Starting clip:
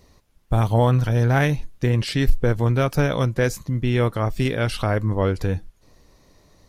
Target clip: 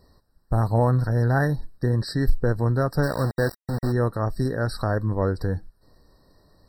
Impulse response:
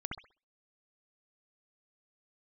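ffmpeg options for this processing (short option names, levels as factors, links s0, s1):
-filter_complex "[0:a]asplit=3[s0][s1][s2];[s0]afade=t=out:st=3.02:d=0.02[s3];[s1]aeval=exprs='val(0)*gte(abs(val(0)),0.0708)':c=same,afade=t=in:st=3.02:d=0.02,afade=t=out:st=3.91:d=0.02[s4];[s2]afade=t=in:st=3.91:d=0.02[s5];[s3][s4][s5]amix=inputs=3:normalize=0,afftfilt=real='re*eq(mod(floor(b*sr/1024/1900),2),0)':imag='im*eq(mod(floor(b*sr/1024/1900),2),0)':win_size=1024:overlap=0.75,volume=0.75"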